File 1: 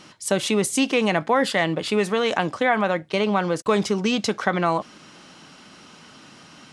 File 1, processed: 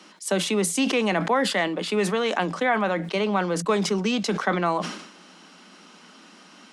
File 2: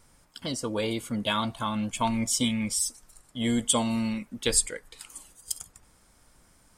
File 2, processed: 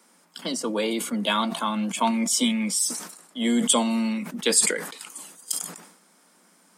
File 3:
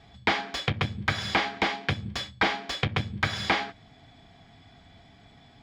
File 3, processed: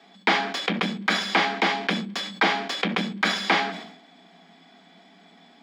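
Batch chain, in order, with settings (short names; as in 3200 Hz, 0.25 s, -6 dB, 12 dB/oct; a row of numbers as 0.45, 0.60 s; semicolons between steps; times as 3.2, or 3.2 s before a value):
Chebyshev high-pass 170 Hz, order 10; sustainer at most 72 dB/s; match loudness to -24 LUFS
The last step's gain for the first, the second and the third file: -2.0, +4.0, +3.5 dB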